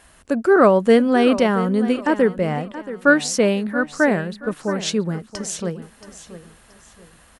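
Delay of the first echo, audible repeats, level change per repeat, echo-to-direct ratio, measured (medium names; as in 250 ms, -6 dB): 677 ms, 3, -10.0 dB, -13.5 dB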